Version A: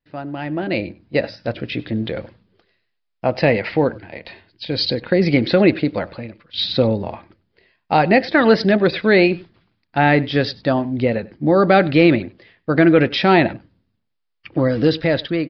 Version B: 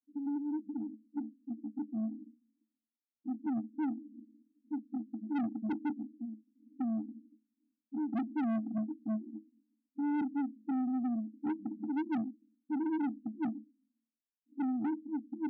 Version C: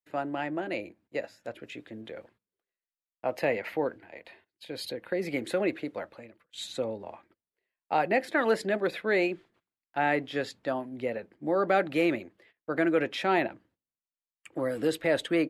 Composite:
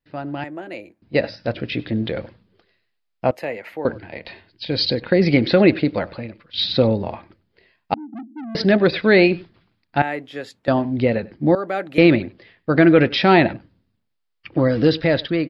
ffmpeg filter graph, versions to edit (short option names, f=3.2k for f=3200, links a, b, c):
-filter_complex "[2:a]asplit=4[a][b][c][d];[0:a]asplit=6[e][f][g][h][i][j];[e]atrim=end=0.442[k];[a]atrim=start=0.438:end=1.022[l];[f]atrim=start=1.018:end=3.312[m];[b]atrim=start=3.308:end=3.852[n];[g]atrim=start=3.848:end=7.942[o];[1:a]atrim=start=7.938:end=8.552[p];[h]atrim=start=8.548:end=10.022[q];[c]atrim=start=10.018:end=10.682[r];[i]atrim=start=10.678:end=11.552[s];[d]atrim=start=11.548:end=11.982[t];[j]atrim=start=11.978[u];[k][l]acrossfade=d=0.004:c1=hsin:c2=hsin[v];[v][m]acrossfade=d=0.004:c1=hsin:c2=hsin[w];[w][n]acrossfade=d=0.004:c1=hsin:c2=hsin[x];[x][o]acrossfade=d=0.004:c1=hsin:c2=hsin[y];[y][p]acrossfade=d=0.004:c1=hsin:c2=hsin[z];[z][q]acrossfade=d=0.004:c1=hsin:c2=hsin[aa];[aa][r]acrossfade=d=0.004:c1=hsin:c2=hsin[ab];[ab][s]acrossfade=d=0.004:c1=hsin:c2=hsin[ac];[ac][t]acrossfade=d=0.004:c1=hsin:c2=hsin[ad];[ad][u]acrossfade=d=0.004:c1=hsin:c2=hsin"